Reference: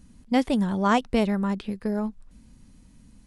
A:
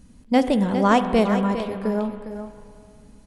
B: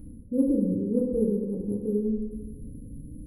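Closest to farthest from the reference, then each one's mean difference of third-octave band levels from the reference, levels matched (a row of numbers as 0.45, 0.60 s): A, B; 4.5, 11.0 dB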